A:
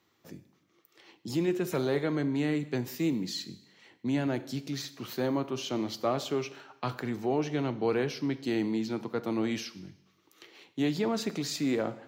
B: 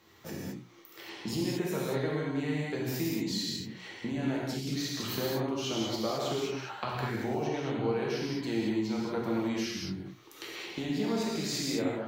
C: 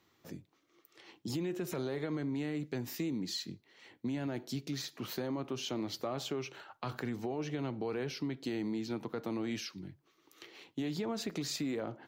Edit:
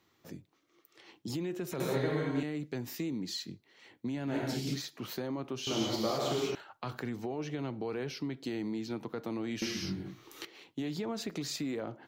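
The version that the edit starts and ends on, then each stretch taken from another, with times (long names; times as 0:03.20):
C
0:01.80–0:02.43: punch in from B
0:04.31–0:04.76: punch in from B, crossfade 0.10 s
0:05.67–0:06.55: punch in from B
0:09.62–0:10.45: punch in from B
not used: A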